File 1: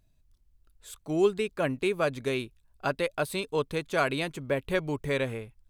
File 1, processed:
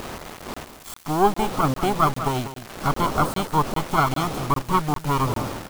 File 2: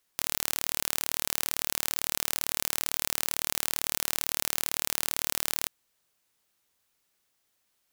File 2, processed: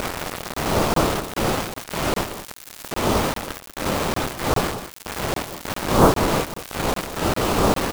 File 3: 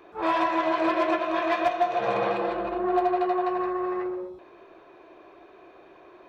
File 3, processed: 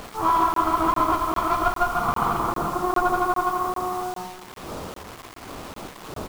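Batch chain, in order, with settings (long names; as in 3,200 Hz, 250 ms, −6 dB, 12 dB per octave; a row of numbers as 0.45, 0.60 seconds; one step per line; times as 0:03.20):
lower of the sound and its delayed copy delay 0.94 ms
wind on the microphone 610 Hz −44 dBFS
high shelf with overshoot 1,600 Hz −6 dB, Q 3
in parallel at +1 dB: upward compression, threshold −34 dBFS
on the sum: surface crackle 430 per second −37 dBFS
bit reduction 6 bits
on a send: single-tap delay 191 ms −11.5 dB
on the sum: regular buffer underruns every 0.40 s, samples 1,024, zero, from 0:00.54
loudness normalisation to −23 LKFS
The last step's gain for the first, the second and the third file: +1.5, +12.0, −3.5 decibels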